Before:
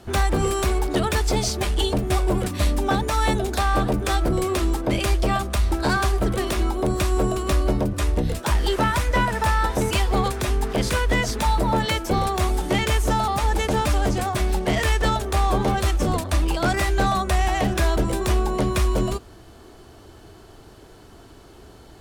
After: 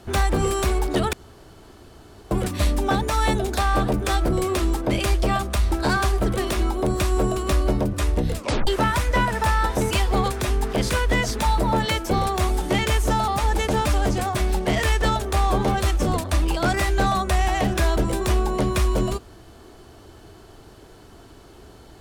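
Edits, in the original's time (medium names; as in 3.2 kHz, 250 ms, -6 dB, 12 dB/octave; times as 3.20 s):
1.13–2.31 s: room tone
8.37 s: tape stop 0.30 s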